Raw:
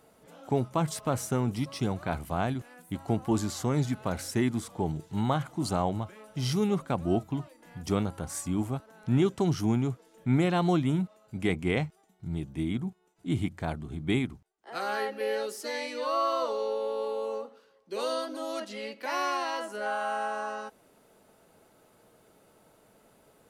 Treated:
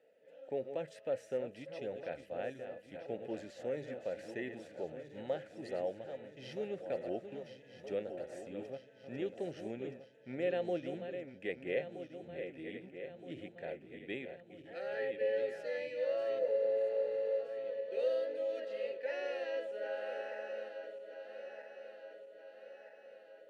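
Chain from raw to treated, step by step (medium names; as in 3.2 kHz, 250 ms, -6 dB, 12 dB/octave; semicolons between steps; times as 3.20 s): backward echo that repeats 636 ms, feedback 72%, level -9 dB; vowel filter e; spectral replace 16.41–17.33 s, 970–6100 Hz after; trim +2 dB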